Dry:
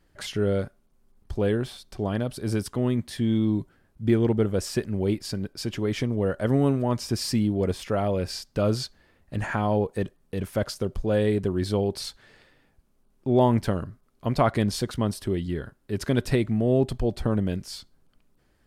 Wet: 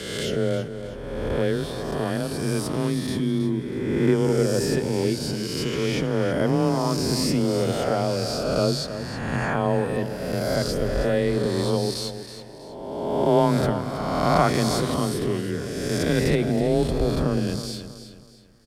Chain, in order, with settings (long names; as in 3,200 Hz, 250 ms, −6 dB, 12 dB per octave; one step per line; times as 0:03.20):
peak hold with a rise ahead of every peak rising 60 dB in 1.73 s
repeating echo 321 ms, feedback 35%, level −11 dB
frequency shifter +20 Hz
level −1 dB